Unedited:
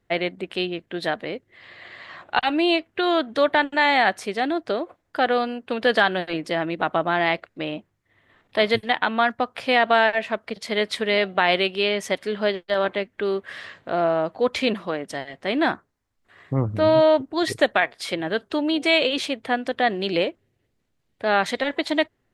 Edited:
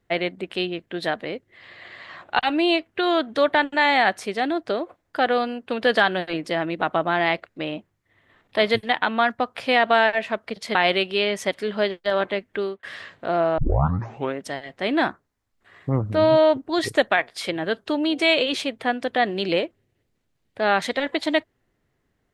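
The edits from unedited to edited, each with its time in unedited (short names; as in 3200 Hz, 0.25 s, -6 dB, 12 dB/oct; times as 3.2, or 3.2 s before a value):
10.75–11.39 cut
13.22–13.47 fade out
14.22 tape start 0.83 s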